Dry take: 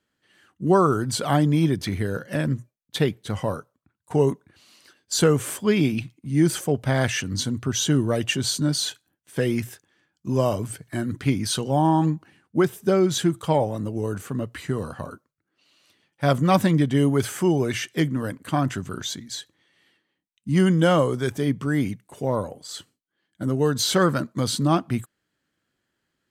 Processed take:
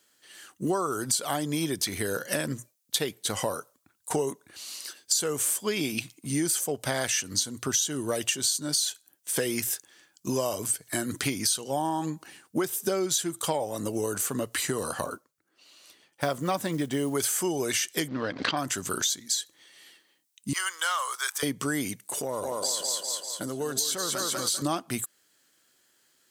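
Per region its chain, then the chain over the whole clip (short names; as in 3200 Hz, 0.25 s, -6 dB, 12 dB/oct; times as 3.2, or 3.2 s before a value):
15.05–17.15 block floating point 7-bit + high shelf 2500 Hz -9 dB
18.08–18.57 G.711 law mismatch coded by A + steep low-pass 4700 Hz + backwards sustainer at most 93 dB/s
20.53–21.43 ladder high-pass 1000 Hz, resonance 50% + sample leveller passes 1
22.07–24.62 thinning echo 0.196 s, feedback 54%, high-pass 230 Hz, level -5 dB + compressor 4:1, threshold -32 dBFS
whole clip: tone controls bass -13 dB, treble +14 dB; compressor 6:1, threshold -32 dBFS; gain +6.5 dB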